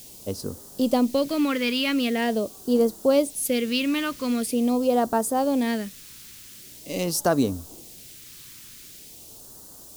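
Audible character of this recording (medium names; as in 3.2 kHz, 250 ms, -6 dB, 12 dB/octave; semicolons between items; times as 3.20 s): a quantiser's noise floor 8-bit, dither triangular; phasing stages 2, 0.44 Hz, lowest notch 650–2200 Hz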